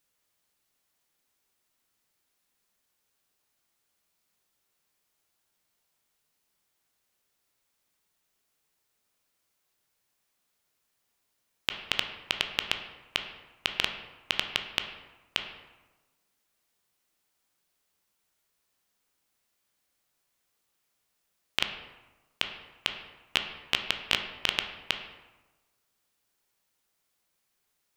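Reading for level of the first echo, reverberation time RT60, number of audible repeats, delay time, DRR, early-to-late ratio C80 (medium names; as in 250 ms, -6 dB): no echo, 1.2 s, no echo, no echo, 5.0 dB, 9.5 dB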